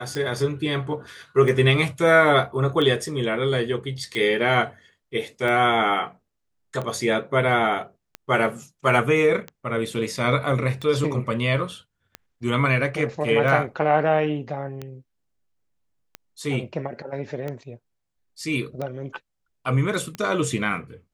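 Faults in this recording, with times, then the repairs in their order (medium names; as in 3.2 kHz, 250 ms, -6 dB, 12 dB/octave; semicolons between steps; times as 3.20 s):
tick 45 rpm -18 dBFS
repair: de-click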